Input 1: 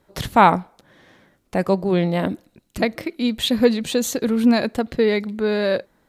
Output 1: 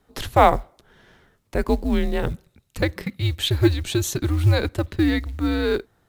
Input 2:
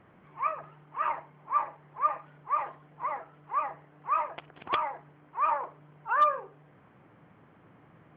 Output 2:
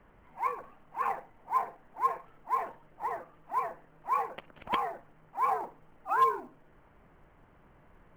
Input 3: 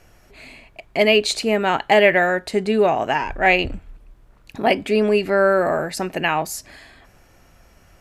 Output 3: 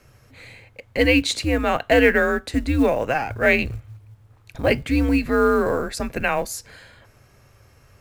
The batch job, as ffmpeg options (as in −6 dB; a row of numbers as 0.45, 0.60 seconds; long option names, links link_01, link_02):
-af "afreqshift=-140,acrusher=bits=8:mode=log:mix=0:aa=0.000001,volume=-1.5dB"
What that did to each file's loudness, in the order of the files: −2.0, −1.5, −1.5 LU